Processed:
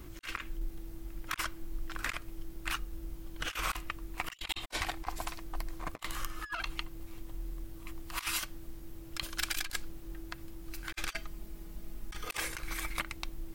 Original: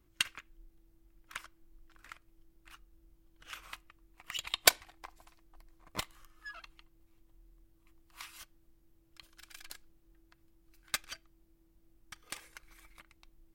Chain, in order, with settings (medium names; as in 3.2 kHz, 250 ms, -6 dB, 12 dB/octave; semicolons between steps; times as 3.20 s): 11.11–12.25 s: comb 4.8 ms, depth 52%; compressor with a negative ratio -53 dBFS, ratio -0.5; trim +13.5 dB